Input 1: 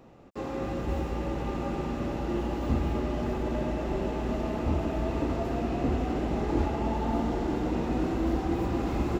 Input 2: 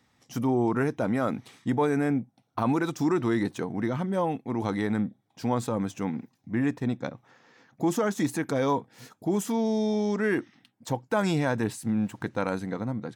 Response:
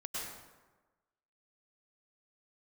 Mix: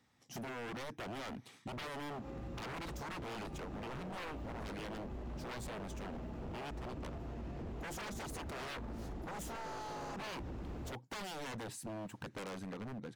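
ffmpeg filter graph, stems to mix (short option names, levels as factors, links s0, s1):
-filter_complex "[0:a]acrossover=split=190[s0][s1];[s1]acompressor=threshold=0.01:ratio=6[s2];[s0][s2]amix=inputs=2:normalize=0,adelay=1750,volume=0.562[s3];[1:a]volume=0.473,asplit=2[s4][s5];[s5]apad=whole_len=482646[s6];[s3][s6]sidechaincompress=threshold=0.0178:ratio=8:attack=37:release=176[s7];[s7][s4]amix=inputs=2:normalize=0,aeval=exprs='0.0178*(abs(mod(val(0)/0.0178+3,4)-2)-1)':c=same,acompressor=threshold=0.00891:ratio=6"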